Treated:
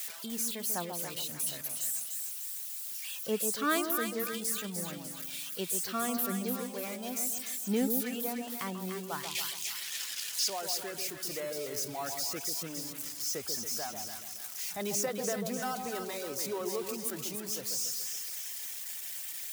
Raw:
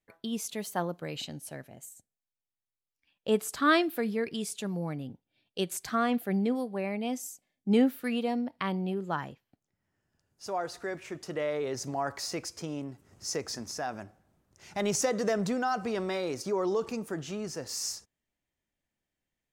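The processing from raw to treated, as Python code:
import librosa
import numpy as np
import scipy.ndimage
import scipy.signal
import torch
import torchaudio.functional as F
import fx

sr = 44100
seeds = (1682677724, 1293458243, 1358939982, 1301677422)

p1 = x + 0.5 * 10.0 ** (-22.5 / 20.0) * np.diff(np.sign(x), prepend=np.sign(x[:1]))
p2 = fx.weighting(p1, sr, curve='D', at=(9.23, 10.5))
p3 = fx.dereverb_blind(p2, sr, rt60_s=1.3)
p4 = scipy.signal.sosfilt(scipy.signal.butter(2, 45.0, 'highpass', fs=sr, output='sos'), p3)
p5 = p4 + fx.echo_split(p4, sr, split_hz=1100.0, low_ms=140, high_ms=298, feedback_pct=52, wet_db=-5.5, dry=0)
y = p5 * 10.0 ** (-6.0 / 20.0)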